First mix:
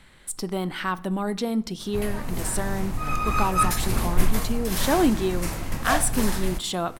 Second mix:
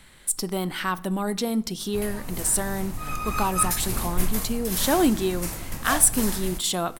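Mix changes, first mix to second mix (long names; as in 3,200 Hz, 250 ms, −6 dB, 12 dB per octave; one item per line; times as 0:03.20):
background −5.0 dB
master: add high-shelf EQ 6,100 Hz +11 dB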